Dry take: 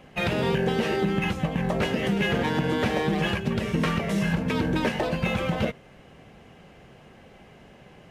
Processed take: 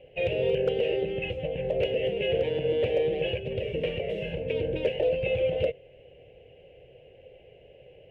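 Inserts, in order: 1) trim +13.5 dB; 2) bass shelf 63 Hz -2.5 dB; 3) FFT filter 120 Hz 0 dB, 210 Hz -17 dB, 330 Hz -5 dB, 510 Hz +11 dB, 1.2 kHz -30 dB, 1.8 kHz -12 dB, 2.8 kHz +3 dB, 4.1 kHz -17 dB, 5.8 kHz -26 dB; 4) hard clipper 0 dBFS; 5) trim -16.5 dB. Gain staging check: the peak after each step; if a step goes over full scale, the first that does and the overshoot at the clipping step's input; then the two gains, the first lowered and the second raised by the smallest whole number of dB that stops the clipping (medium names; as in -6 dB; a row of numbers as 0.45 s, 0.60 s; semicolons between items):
+1.0 dBFS, +1.0 dBFS, +4.0 dBFS, 0.0 dBFS, -16.5 dBFS; step 1, 4.0 dB; step 1 +9.5 dB, step 5 -12.5 dB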